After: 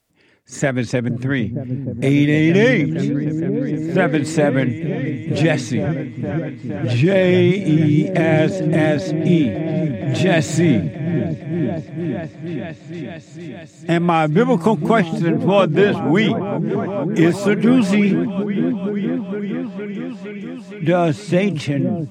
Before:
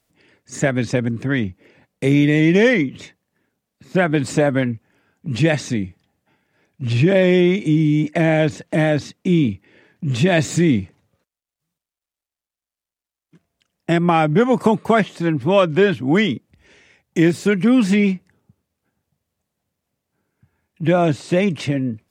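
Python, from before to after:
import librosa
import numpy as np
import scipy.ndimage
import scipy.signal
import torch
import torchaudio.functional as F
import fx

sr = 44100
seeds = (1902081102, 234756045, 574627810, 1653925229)

y = fx.echo_opening(x, sr, ms=464, hz=200, octaves=1, feedback_pct=70, wet_db=-3)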